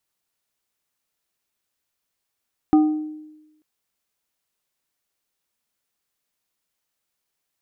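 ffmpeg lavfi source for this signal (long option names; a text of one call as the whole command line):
ffmpeg -f lavfi -i "aevalsrc='0.335*pow(10,-3*t/1.03)*sin(2*PI*307*t)+0.1*pow(10,-3*t/0.542)*sin(2*PI*767.5*t)+0.0299*pow(10,-3*t/0.39)*sin(2*PI*1228*t)':duration=0.89:sample_rate=44100" out.wav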